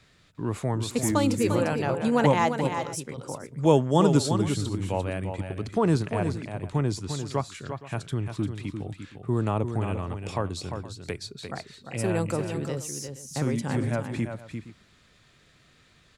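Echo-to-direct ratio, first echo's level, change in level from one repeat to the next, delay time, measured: -7.0 dB, -7.5 dB, no steady repeat, 0.348 s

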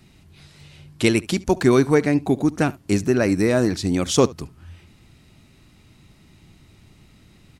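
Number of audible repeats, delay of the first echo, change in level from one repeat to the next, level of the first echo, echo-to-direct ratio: 1, 71 ms, no steady repeat, -22.0 dB, -22.0 dB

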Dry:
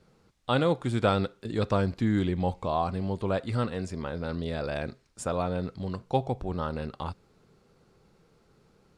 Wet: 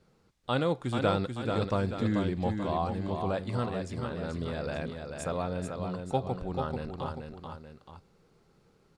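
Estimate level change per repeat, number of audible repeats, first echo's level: -6.0 dB, 2, -5.5 dB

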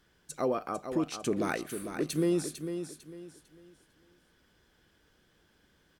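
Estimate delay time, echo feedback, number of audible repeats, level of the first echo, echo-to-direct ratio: 0.45 s, 30%, 3, -8.5 dB, -8.0 dB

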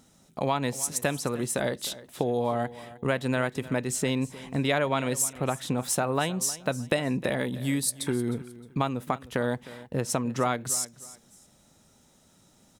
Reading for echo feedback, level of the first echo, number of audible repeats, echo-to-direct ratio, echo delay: 27%, -17.5 dB, 2, -17.0 dB, 0.309 s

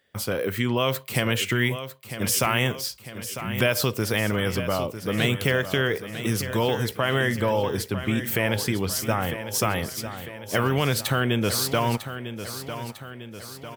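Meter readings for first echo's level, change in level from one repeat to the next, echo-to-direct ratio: -11.0 dB, -5.5 dB, -9.5 dB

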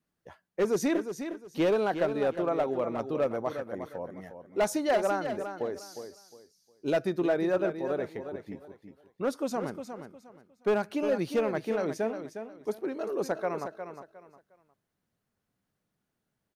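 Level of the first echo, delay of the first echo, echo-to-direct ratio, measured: -9.0 dB, 0.358 s, -8.5 dB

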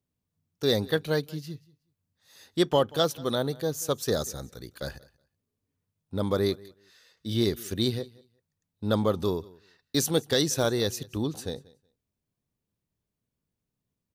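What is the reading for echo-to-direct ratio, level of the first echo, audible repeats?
-23.0 dB, -23.0 dB, 1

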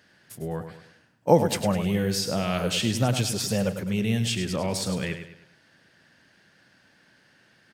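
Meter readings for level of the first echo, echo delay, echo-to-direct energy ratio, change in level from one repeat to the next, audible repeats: -9.0 dB, 0.103 s, -8.5 dB, -8.0 dB, 4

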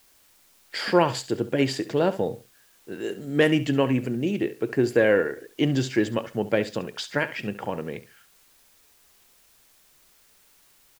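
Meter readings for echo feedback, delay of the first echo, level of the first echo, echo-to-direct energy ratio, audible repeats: 22%, 69 ms, -15.0 dB, -15.0 dB, 2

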